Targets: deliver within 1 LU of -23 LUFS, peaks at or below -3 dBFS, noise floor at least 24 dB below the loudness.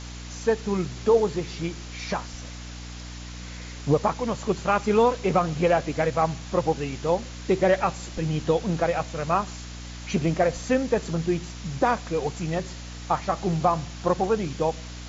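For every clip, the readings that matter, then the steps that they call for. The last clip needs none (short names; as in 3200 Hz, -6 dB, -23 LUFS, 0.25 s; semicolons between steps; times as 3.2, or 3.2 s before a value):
hum 60 Hz; harmonics up to 300 Hz; hum level -36 dBFS; noise floor -38 dBFS; noise floor target -50 dBFS; loudness -25.5 LUFS; peak -9.0 dBFS; loudness target -23.0 LUFS
-> notches 60/120/180/240/300 Hz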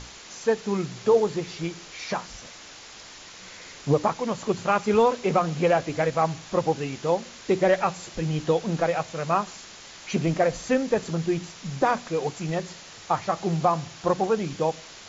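hum none; noise floor -45 dBFS; noise floor target -50 dBFS
-> denoiser 6 dB, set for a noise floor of -45 dBFS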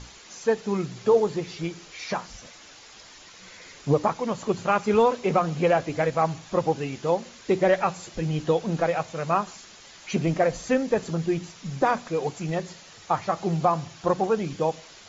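noise floor -48 dBFS; noise floor target -50 dBFS
-> denoiser 6 dB, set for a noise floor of -48 dBFS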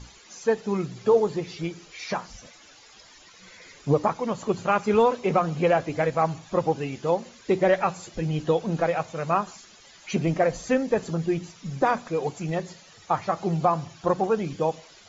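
noise floor -51 dBFS; loudness -25.5 LUFS; peak -8.5 dBFS; loudness target -23.0 LUFS
-> gain +2.5 dB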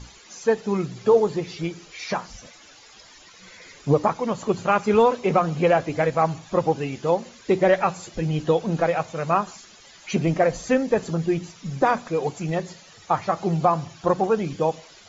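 loudness -23.0 LUFS; peak -6.0 dBFS; noise floor -49 dBFS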